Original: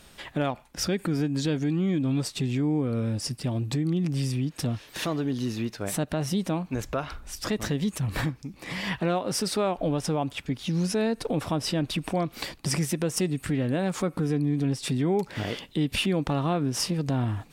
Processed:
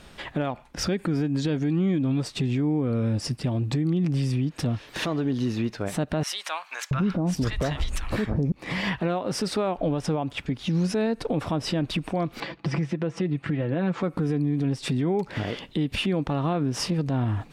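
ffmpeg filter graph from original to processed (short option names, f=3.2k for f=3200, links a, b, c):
-filter_complex "[0:a]asettb=1/sr,asplit=3[a][b][c];[a]atrim=end=6.234[d];[b]atrim=start=6.23:end=8.52,asetpts=PTS-STARTPTS,afade=t=in:d=0.004:c=qsin,afade=t=out:st=2.286:d=0.004:c=qsin,lowshelf=f=180:g=7,acontrast=72,acrossover=split=990[e][f];[e]adelay=680[g];[g][f]amix=inputs=2:normalize=0,atrim=end_sample=100989[h];[c]atrim=start=8.516[i];[d][h]acrossfade=d=0.004:c1=hsin:c2=qsin[j];[j][i]acrossfade=d=0.004:c1=qsin:c2=hsin,asettb=1/sr,asplit=3[k][l][m];[k]atrim=end=12.404[n];[l]atrim=start=12.4:end=14.03,asetpts=PTS-STARTPTS,afade=t=in:d=0.004:c=qsin,afade=t=out:st=1.626:d=0.004:c=qsin,highpass=100,lowpass=3.2k,aecho=1:1:6:0.53,atrim=end_sample=71883[o];[m]atrim=start=14.026[p];[n][o]acrossfade=d=0.004:c1=hsin:c2=qsin[q];[q][p]acrossfade=d=0.004:c1=qsin:c2=hsin,aemphasis=mode=reproduction:type=50kf,alimiter=limit=-23dB:level=0:latency=1:release=193,volume=5.5dB"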